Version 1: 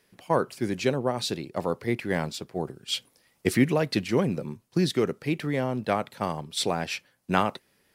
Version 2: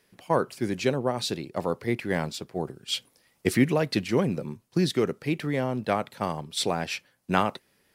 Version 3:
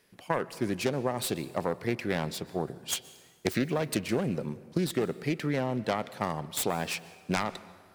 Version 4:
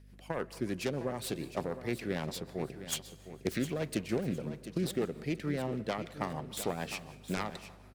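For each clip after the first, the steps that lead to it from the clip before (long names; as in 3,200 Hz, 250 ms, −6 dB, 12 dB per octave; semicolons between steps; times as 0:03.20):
no processing that can be heard
phase distortion by the signal itself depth 0.3 ms; downward compressor, threshold −24 dBFS, peak gain reduction 9 dB; dense smooth reverb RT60 1.8 s, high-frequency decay 0.65×, pre-delay 110 ms, DRR 17.5 dB
rotating-speaker cabinet horn 6.7 Hz; mains hum 50 Hz, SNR 19 dB; on a send: repeating echo 709 ms, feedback 27%, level −12 dB; on the sum: level −3 dB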